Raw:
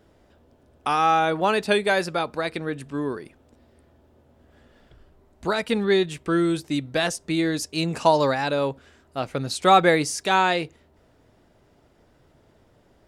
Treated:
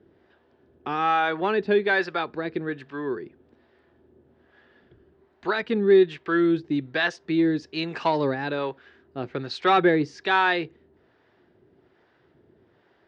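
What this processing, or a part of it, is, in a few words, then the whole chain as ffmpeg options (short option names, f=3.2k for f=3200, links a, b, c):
guitar amplifier with harmonic tremolo: -filter_complex "[0:a]acrossover=split=550[a][b];[a]aeval=exprs='val(0)*(1-0.7/2+0.7/2*cos(2*PI*1.2*n/s))':c=same[c];[b]aeval=exprs='val(0)*(1-0.7/2-0.7/2*cos(2*PI*1.2*n/s))':c=same[d];[c][d]amix=inputs=2:normalize=0,asoftclip=type=tanh:threshold=-11.5dB,highpass=98,equalizer=f=370:t=q:w=4:g=9,equalizer=f=590:t=q:w=4:g=-4,equalizer=f=1.7k:t=q:w=4:g=7,lowpass=f=4.3k:w=0.5412,lowpass=f=4.3k:w=1.3066"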